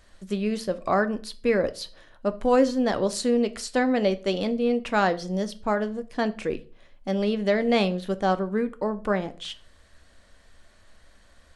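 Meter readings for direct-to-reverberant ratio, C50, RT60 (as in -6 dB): 10.5 dB, 19.0 dB, 0.40 s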